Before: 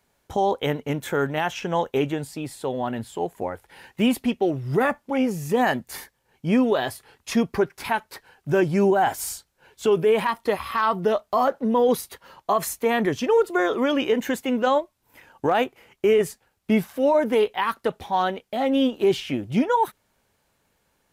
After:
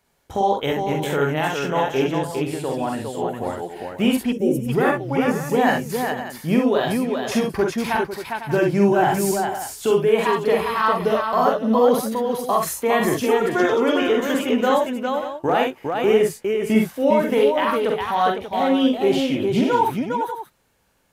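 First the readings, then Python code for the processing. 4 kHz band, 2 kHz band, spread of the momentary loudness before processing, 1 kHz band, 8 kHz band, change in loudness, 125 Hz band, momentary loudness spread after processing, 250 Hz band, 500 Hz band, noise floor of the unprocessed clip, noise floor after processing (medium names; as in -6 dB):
+3.5 dB, +3.5 dB, 10 LU, +3.5 dB, +3.5 dB, +3.0 dB, +3.5 dB, 8 LU, +3.5 dB, +3.0 dB, -71 dBFS, -50 dBFS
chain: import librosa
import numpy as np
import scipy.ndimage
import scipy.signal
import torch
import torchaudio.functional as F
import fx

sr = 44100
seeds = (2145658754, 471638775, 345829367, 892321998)

y = fx.echo_multitap(x, sr, ms=(45, 64, 406, 502, 586), db=(-3.5, -6.5, -4.0, -11.5, -12.0))
y = fx.spec_box(y, sr, start_s=4.32, length_s=0.37, low_hz=600.0, high_hz=5200.0, gain_db=-16)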